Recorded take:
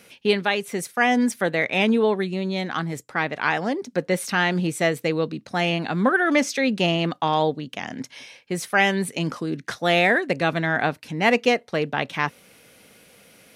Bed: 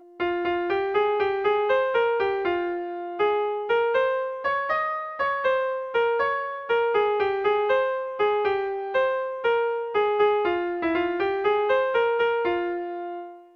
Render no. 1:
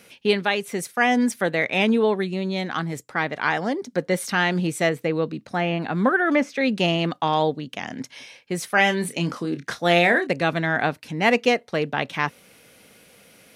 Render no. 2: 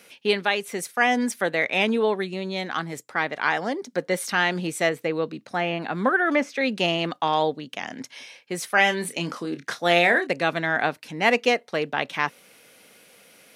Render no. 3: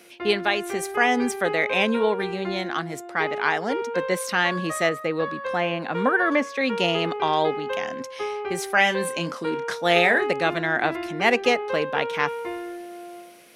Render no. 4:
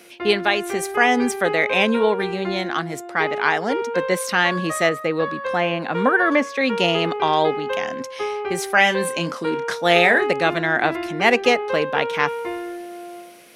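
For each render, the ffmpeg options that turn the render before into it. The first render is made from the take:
-filter_complex "[0:a]asettb=1/sr,asplit=3[s0][s1][s2];[s0]atrim=end=3.164[s3];[s1]atrim=start=3.16:end=4.34,asetpts=PTS-STARTPTS,afade=t=in:d=0.004:c=qsin,afade=t=out:st=1.176:d=0.004:c=qsin,bandreject=f=2600:w=12[s4];[s2]atrim=start=4.336[s5];[s3][s4]acrossfade=d=0.004:c1=hsin:c2=qsin[s6];[s6][s5]acrossfade=d=0.004:c1=qsin:c2=hsin,asettb=1/sr,asplit=3[s7][s8][s9];[s7]atrim=end=4.894[s10];[s8]atrim=start=4.89:end=6.61,asetpts=PTS-STARTPTS,afade=t=in:d=0.004:c=qsin,afade=t=out:st=1.716:d=0.004:c=qsin,acrossover=split=2600[s11][s12];[s12]acompressor=threshold=0.00562:ratio=4:attack=1:release=60[s13];[s11][s13]amix=inputs=2:normalize=0[s14];[s9]atrim=start=6.606[s15];[s10][s14]acrossfade=d=0.004:c1=hsin:c2=qsin[s16];[s16][s15]acrossfade=d=0.004:c1=qsin:c2=hsin,asettb=1/sr,asplit=3[s17][s18][s19];[s17]atrim=end=8.744[s20];[s18]atrim=start=8.74:end=10.27,asetpts=PTS-STARTPTS,afade=t=in:d=0.004:c=qsin,afade=t=out:st=1.526:d=0.004:c=qsin,asplit=2[s21][s22];[s22]adelay=29,volume=0.355[s23];[s21][s23]amix=inputs=2:normalize=0,atrim=end_sample=67473[s24];[s19]atrim=start=10.266[s25];[s20][s24]acrossfade=d=0.004:c1=hsin:c2=qsin[s26];[s26][s25]acrossfade=d=0.004:c1=qsin:c2=hsin"
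-af "highpass=f=330:p=1"
-filter_complex "[1:a]volume=0.447[s0];[0:a][s0]amix=inputs=2:normalize=0"
-af "volume=1.5,alimiter=limit=0.891:level=0:latency=1"

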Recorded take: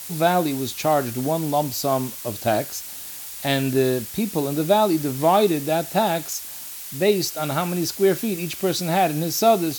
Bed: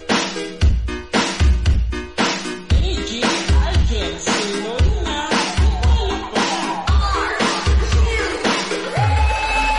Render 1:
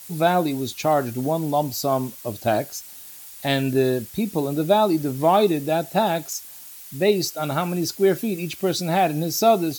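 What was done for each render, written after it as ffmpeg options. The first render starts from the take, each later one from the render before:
-af "afftdn=nr=8:nf=-36"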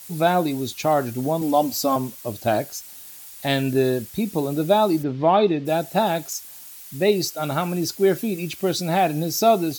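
-filter_complex "[0:a]asettb=1/sr,asplit=3[s0][s1][s2];[s0]atrim=end=1.414[s3];[s1]atrim=start=1.41:end=1.96,asetpts=PTS-STARTPTS,afade=t=in:d=0.004:c=qsin,afade=t=out:st=0.546:d=0.004:c=qsin,aecho=1:1:3.8:0.85,atrim=end_sample=24255[s4];[s2]atrim=start=1.956[s5];[s3][s4]acrossfade=d=0.004:c1=hsin:c2=qsin[s6];[s6][s5]acrossfade=d=0.004:c1=qsin:c2=hsin,asplit=3[s7][s8][s9];[s7]afade=t=out:st=5.02:d=0.02[s10];[s8]lowpass=f=4100:w=0.5412,lowpass=f=4100:w=1.3066,afade=t=in:st=5.02:d=0.02,afade=t=out:st=5.65:d=0.02[s11];[s9]afade=t=in:st=5.65:d=0.02[s12];[s10][s11][s12]amix=inputs=3:normalize=0"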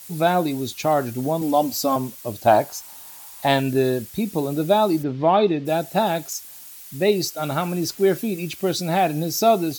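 -filter_complex "[0:a]asettb=1/sr,asplit=3[s0][s1][s2];[s0]atrim=end=2.454[s3];[s1]atrim=start=2.45:end=3.6,asetpts=PTS-STARTPTS,afade=t=in:d=0.004:c=qsin,afade=t=out:st=1.146:d=0.004:c=qsin,equalizer=f=910:w=1.7:g=13[s4];[s2]atrim=start=3.596[s5];[s3][s4]acrossfade=d=0.004:c1=hsin:c2=qsin[s6];[s6][s5]acrossfade=d=0.004:c1=qsin:c2=hsin,asettb=1/sr,asplit=3[s7][s8][s9];[s7]atrim=end=7.364[s10];[s8]atrim=start=7.36:end=8.17,asetpts=PTS-STARTPTS,afade=t=in:d=0.004:c=qsin,afade=t=out:st=0.806:d=0.004:c=qsin,aeval=exprs='val(0)*gte(abs(val(0)),0.0112)':c=same[s11];[s9]atrim=start=8.166[s12];[s10][s11]acrossfade=d=0.004:c1=hsin:c2=qsin[s13];[s13][s12]acrossfade=d=0.004:c1=qsin:c2=hsin"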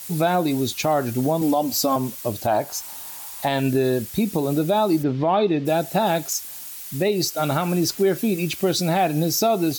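-filter_complex "[0:a]asplit=2[s0][s1];[s1]acompressor=threshold=0.0562:ratio=6,volume=0.794[s2];[s0][s2]amix=inputs=2:normalize=0,alimiter=limit=0.282:level=0:latency=1:release=124"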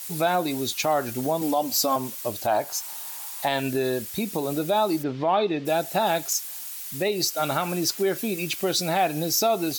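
-af "lowshelf=f=350:g=-10.5"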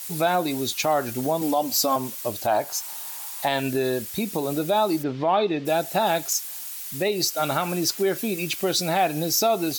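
-af "volume=1.12"

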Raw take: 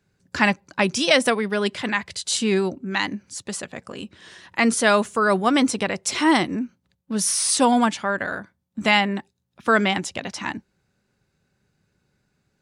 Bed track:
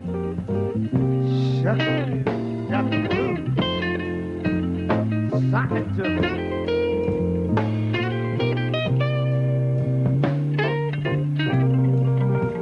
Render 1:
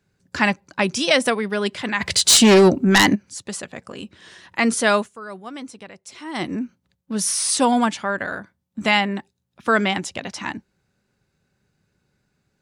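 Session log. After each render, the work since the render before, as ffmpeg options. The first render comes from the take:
-filter_complex "[0:a]asplit=3[s0][s1][s2];[s0]afade=t=out:st=2:d=0.02[s3];[s1]aeval=exprs='0.422*sin(PI/2*3.16*val(0)/0.422)':c=same,afade=t=in:st=2:d=0.02,afade=t=out:st=3.14:d=0.02[s4];[s2]afade=t=in:st=3.14:d=0.02[s5];[s3][s4][s5]amix=inputs=3:normalize=0,asplit=3[s6][s7][s8];[s6]atrim=end=5.09,asetpts=PTS-STARTPTS,afade=t=out:st=4.96:d=0.13:silence=0.158489[s9];[s7]atrim=start=5.09:end=6.33,asetpts=PTS-STARTPTS,volume=0.158[s10];[s8]atrim=start=6.33,asetpts=PTS-STARTPTS,afade=t=in:d=0.13:silence=0.158489[s11];[s9][s10][s11]concat=n=3:v=0:a=1"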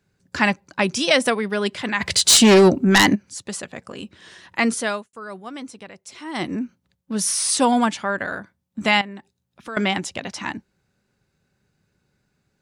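-filter_complex "[0:a]asettb=1/sr,asplit=3[s0][s1][s2];[s0]atrim=end=9.014[s3];[s1]atrim=start=9.01:end=9.77,asetpts=PTS-STARTPTS,afade=t=in:d=0.004:c=qsin,afade=t=out:st=0.756:d=0.004:c=qsin,acompressor=threshold=0.00794:ratio=2:attack=3.2:release=140:knee=1:detection=peak[s4];[s2]atrim=start=9.766[s5];[s3][s4]acrossfade=d=0.004:c1=hsin:c2=qsin[s6];[s6][s5]acrossfade=d=0.004:c1=qsin:c2=hsin,asplit=2[s7][s8];[s7]atrim=end=5.13,asetpts=PTS-STARTPTS,afade=t=out:st=4.6:d=0.53[s9];[s8]atrim=start=5.13,asetpts=PTS-STARTPTS,afade=t=in:d=0.004:c=hsin[s10];[s9][s10]concat=n=2:v=0:a=1"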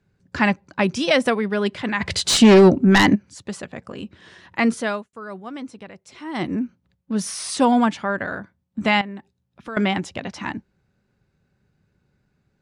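-af "lowpass=f=2900:p=1,lowshelf=f=210:g=5"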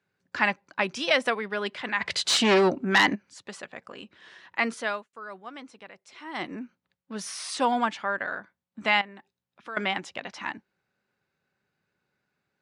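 -af "highpass=f=1100:p=1,highshelf=f=5900:g=-11.5"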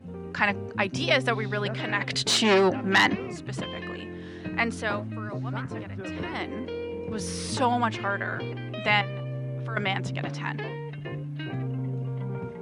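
-filter_complex "[1:a]volume=0.251[s0];[0:a][s0]amix=inputs=2:normalize=0"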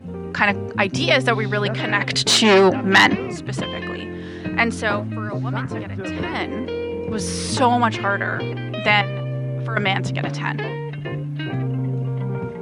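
-af "volume=2.37,alimiter=limit=0.794:level=0:latency=1"

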